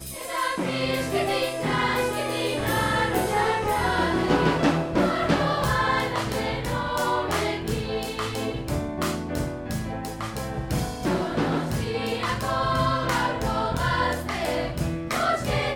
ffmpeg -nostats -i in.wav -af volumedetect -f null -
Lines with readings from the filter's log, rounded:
mean_volume: -25.2 dB
max_volume: -8.0 dB